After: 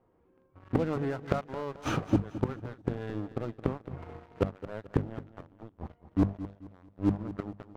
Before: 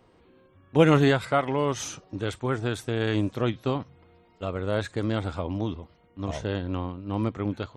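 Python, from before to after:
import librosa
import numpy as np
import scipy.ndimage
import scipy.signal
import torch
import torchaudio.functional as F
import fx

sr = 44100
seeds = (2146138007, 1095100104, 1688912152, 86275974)

p1 = fx.gate_flip(x, sr, shuts_db=-23.0, range_db=-29)
p2 = scipy.signal.sosfilt(scipy.signal.butter(2, 1300.0, 'lowpass', fs=sr, output='sos'), p1)
p3 = fx.noise_reduce_blind(p2, sr, reduce_db=7)
p4 = fx.highpass(p3, sr, hz=56.0, slope=24, at=(3.63, 4.67))
p5 = fx.rider(p4, sr, range_db=5, speed_s=0.5)
p6 = p4 + F.gain(torch.from_numpy(p5), 2.0).numpy()
p7 = fx.hum_notches(p6, sr, base_hz=50, count=5)
p8 = fx.leveller(p7, sr, passes=3)
p9 = p8 + fx.echo_feedback(p8, sr, ms=218, feedback_pct=35, wet_db=-14.0, dry=0)
y = F.gain(torch.from_numpy(p9), -1.0).numpy()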